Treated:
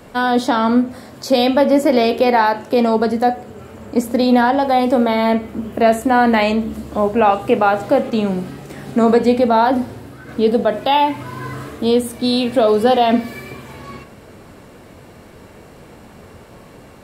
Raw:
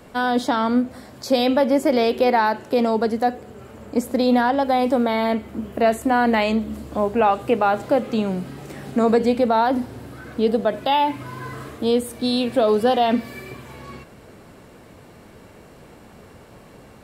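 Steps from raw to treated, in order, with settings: 8.10–10.29 s: expander -33 dBFS; reverberation RT60 0.40 s, pre-delay 15 ms, DRR 10.5 dB; trim +4 dB

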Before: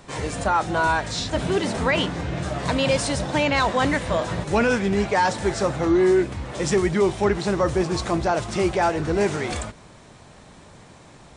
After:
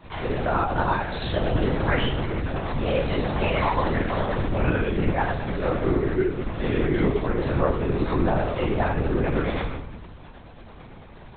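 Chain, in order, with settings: compression, threshold -21 dBFS, peak gain reduction 6.5 dB; 2.30–2.86 s: hard clipper -28 dBFS, distortion -19 dB; tremolo triangle 9.1 Hz, depth 75%; simulated room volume 190 m³, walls mixed, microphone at 3.2 m; LPC vocoder at 8 kHz whisper; trim -5.5 dB

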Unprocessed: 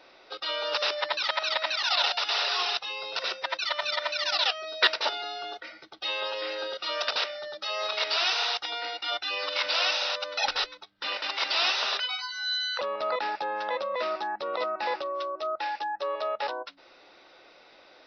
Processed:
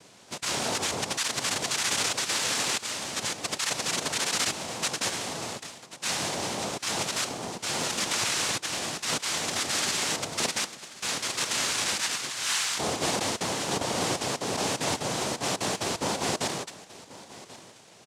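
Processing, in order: peak limiter -19.5 dBFS, peak gain reduction 10 dB; noise-vocoded speech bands 2; delay 1085 ms -18 dB; trim +1.5 dB

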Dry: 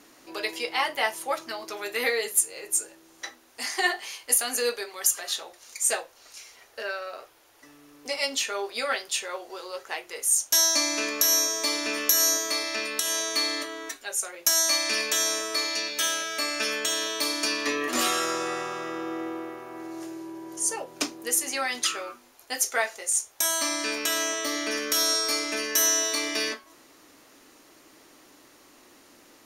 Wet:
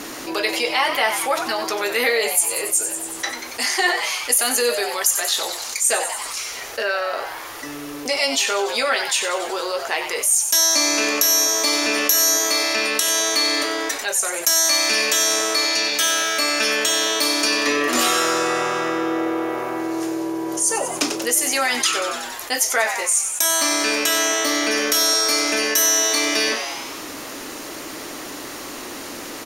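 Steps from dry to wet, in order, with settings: frequency-shifting echo 93 ms, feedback 57%, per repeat +130 Hz, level -13 dB; level flattener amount 50%; trim +3 dB

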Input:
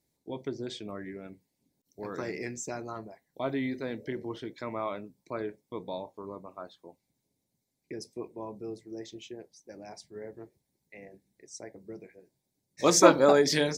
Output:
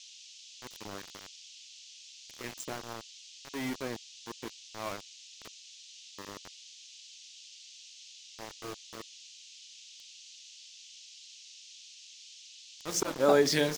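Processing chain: slow attack 316 ms; small samples zeroed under -34 dBFS; band noise 2.7–6.8 kHz -51 dBFS; trim -1 dB

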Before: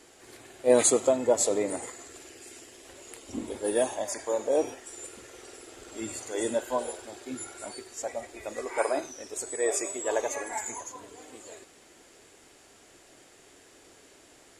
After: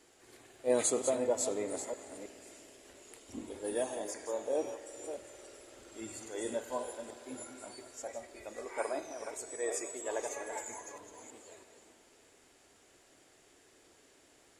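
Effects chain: chunks repeated in reverse 323 ms, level -8.5 dB; spring tank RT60 4 s, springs 51 ms, chirp 55 ms, DRR 14 dB; crackle 14 per s -52 dBFS; trim -8.5 dB

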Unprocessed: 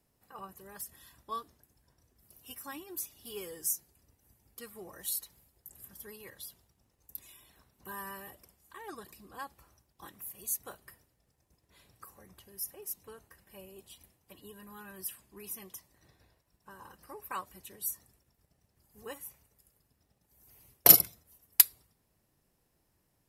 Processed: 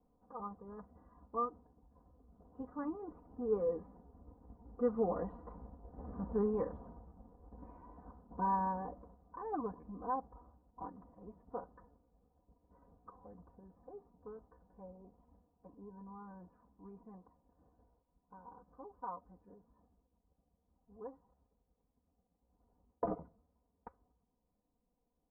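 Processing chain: Doppler pass-by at 5.66 s, 13 m/s, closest 12 m; steep low-pass 1.1 kHz 36 dB/octave; comb 4.1 ms, depth 79%; wow and flutter 19 cents; tempo 0.92×; trim +17 dB

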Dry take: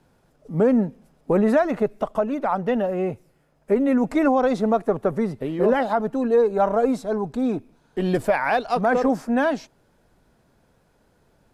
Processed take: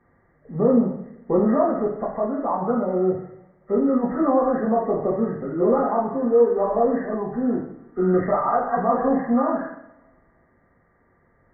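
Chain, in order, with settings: knee-point frequency compression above 1.1 kHz 4:1; two-slope reverb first 0.71 s, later 2 s, from -25 dB, DRR -3 dB; trim -5 dB

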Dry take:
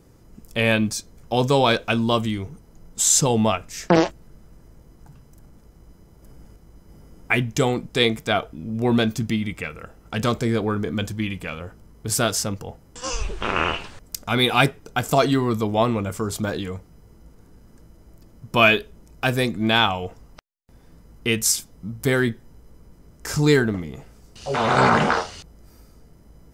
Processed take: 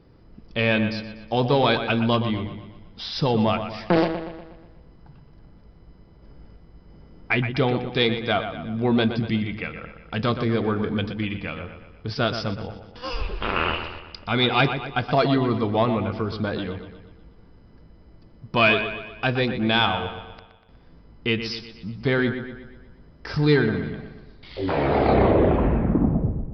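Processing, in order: tape stop on the ending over 2.73 s; saturation -7.5 dBFS, distortion -21 dB; on a send: feedback echo behind a low-pass 121 ms, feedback 50%, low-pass 3.5 kHz, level -9 dB; on the sum: resampled via 11.025 kHz; trim -1 dB

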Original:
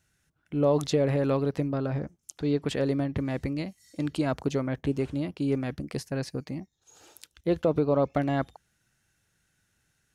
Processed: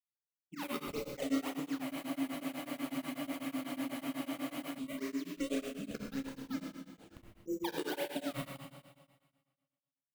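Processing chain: spectral contrast enhancement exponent 3.1; compression, threshold -33 dBFS, peak gain reduction 12 dB; Chebyshev high-pass 200 Hz, order 4; decimation with a swept rate 30×, swing 160% 1.7 Hz; phase shifter stages 6, 2.6 Hz, lowest notch 360–1700 Hz; expander -58 dBFS; Schroeder reverb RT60 1.5 s, combs from 26 ms, DRR -1.5 dB; spectral freeze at 1.85 s, 2.92 s; tremolo of two beating tones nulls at 8.1 Hz; trim +1 dB

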